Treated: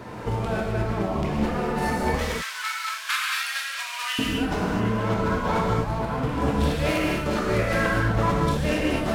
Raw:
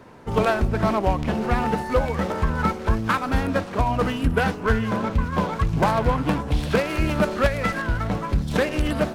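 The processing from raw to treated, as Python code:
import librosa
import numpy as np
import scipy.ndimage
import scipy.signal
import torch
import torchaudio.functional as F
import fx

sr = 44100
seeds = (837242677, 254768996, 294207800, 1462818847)

y = fx.bessel_highpass(x, sr, hz=2700.0, order=4, at=(2.15, 4.19))
y = fx.over_compress(y, sr, threshold_db=-30.0, ratio=-1.0)
y = fx.rev_gated(y, sr, seeds[0], gate_ms=280, shape='flat', drr_db=-3.5)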